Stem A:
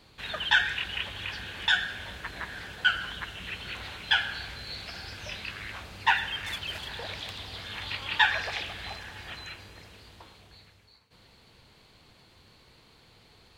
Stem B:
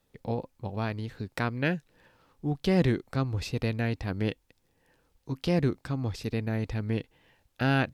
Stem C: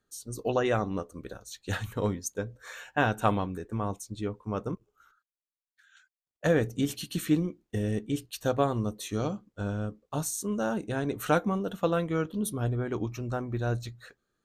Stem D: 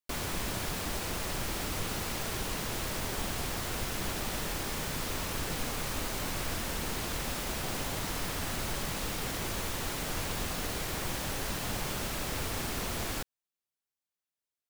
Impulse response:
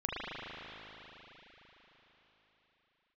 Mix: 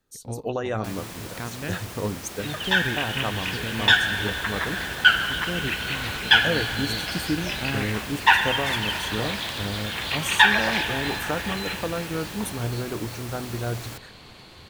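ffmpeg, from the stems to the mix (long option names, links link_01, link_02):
-filter_complex "[0:a]dynaudnorm=framelen=330:gausssize=7:maxgain=11dB,bandreject=frequency=50:width_type=h:width=6,bandreject=frequency=100:width_type=h:width=6,adelay=2200,volume=-1.5dB,asplit=2[link_01][link_02];[link_02]volume=-13dB[link_03];[1:a]volume=-5.5dB[link_04];[2:a]alimiter=limit=-16.5dB:level=0:latency=1:release=475,volume=0.5dB[link_05];[3:a]highpass=79,adelay=750,volume=-3dB[link_06];[4:a]atrim=start_sample=2205[link_07];[link_03][link_07]afir=irnorm=-1:irlink=0[link_08];[link_01][link_04][link_05][link_06][link_08]amix=inputs=5:normalize=0"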